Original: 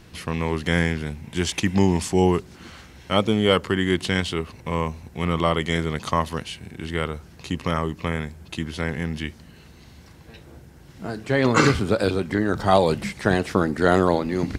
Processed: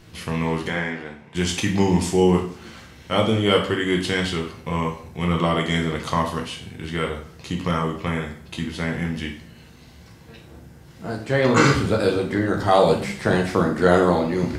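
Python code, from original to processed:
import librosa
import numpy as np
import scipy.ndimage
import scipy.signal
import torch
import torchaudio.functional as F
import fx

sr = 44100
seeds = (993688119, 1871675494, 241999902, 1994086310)

y = fx.bandpass_q(x, sr, hz=980.0, q=0.61, at=(0.68, 1.35))
y = fx.rev_plate(y, sr, seeds[0], rt60_s=0.54, hf_ratio=0.9, predelay_ms=0, drr_db=0.5)
y = y * 10.0 ** (-1.5 / 20.0)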